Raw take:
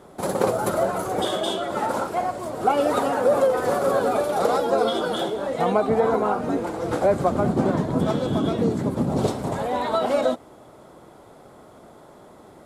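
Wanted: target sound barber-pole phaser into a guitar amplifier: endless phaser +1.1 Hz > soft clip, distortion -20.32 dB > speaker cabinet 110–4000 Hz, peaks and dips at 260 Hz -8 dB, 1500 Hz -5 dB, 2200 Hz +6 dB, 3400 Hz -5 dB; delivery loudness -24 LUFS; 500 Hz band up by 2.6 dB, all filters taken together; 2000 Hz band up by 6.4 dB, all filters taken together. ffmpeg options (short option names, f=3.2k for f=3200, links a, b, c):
-filter_complex "[0:a]equalizer=f=500:t=o:g=3,equalizer=f=2k:t=o:g=9,asplit=2[a][b];[b]afreqshift=1.1[c];[a][c]amix=inputs=2:normalize=1,asoftclip=threshold=-12dB,highpass=110,equalizer=f=260:t=q:w=4:g=-8,equalizer=f=1.5k:t=q:w=4:g=-5,equalizer=f=2.2k:t=q:w=4:g=6,equalizer=f=3.4k:t=q:w=4:g=-5,lowpass=f=4k:w=0.5412,lowpass=f=4k:w=1.3066,volume=1.5dB"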